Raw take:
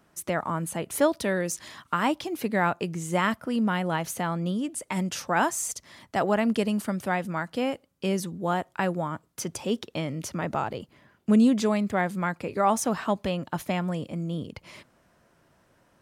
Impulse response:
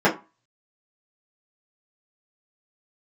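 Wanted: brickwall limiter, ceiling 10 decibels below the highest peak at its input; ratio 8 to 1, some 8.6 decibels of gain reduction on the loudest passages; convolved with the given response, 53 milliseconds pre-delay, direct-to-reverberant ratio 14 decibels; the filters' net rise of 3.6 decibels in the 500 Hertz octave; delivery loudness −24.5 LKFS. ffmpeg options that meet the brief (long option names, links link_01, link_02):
-filter_complex "[0:a]equalizer=frequency=500:width_type=o:gain=4.5,acompressor=threshold=-23dB:ratio=8,alimiter=limit=-20.5dB:level=0:latency=1,asplit=2[link_01][link_02];[1:a]atrim=start_sample=2205,adelay=53[link_03];[link_02][link_03]afir=irnorm=-1:irlink=0,volume=-34.5dB[link_04];[link_01][link_04]amix=inputs=2:normalize=0,volume=6.5dB"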